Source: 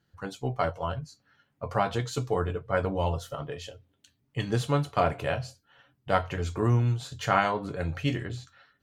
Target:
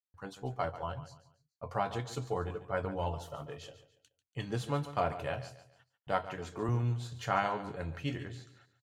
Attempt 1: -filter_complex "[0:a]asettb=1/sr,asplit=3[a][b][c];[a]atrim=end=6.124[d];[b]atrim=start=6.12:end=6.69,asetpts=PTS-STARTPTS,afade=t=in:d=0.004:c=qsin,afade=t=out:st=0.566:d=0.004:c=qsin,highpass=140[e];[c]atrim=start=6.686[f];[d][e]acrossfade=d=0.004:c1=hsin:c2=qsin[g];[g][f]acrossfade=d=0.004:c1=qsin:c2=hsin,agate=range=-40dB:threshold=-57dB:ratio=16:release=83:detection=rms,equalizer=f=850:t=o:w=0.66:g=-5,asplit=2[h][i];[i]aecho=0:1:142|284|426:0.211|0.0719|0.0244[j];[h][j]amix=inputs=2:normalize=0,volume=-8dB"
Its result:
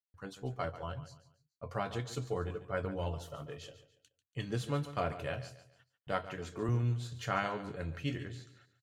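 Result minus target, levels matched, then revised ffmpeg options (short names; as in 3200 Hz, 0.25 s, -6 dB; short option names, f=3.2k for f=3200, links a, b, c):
1000 Hz band -3.0 dB
-filter_complex "[0:a]asettb=1/sr,asplit=3[a][b][c];[a]atrim=end=6.124[d];[b]atrim=start=6.12:end=6.69,asetpts=PTS-STARTPTS,afade=t=in:d=0.004:c=qsin,afade=t=out:st=0.566:d=0.004:c=qsin,highpass=140[e];[c]atrim=start=6.686[f];[d][e]acrossfade=d=0.004:c1=hsin:c2=qsin[g];[g][f]acrossfade=d=0.004:c1=qsin:c2=hsin,agate=range=-40dB:threshold=-57dB:ratio=16:release=83:detection=rms,equalizer=f=850:t=o:w=0.66:g=3,asplit=2[h][i];[i]aecho=0:1:142|284|426:0.211|0.0719|0.0244[j];[h][j]amix=inputs=2:normalize=0,volume=-8dB"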